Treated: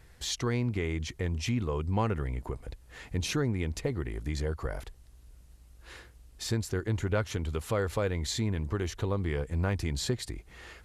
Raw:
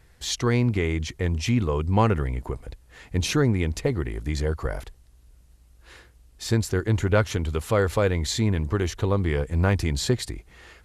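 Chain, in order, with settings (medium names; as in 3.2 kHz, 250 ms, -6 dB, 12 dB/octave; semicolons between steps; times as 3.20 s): compression 1.5:1, threshold -40 dBFS, peak gain reduction 9 dB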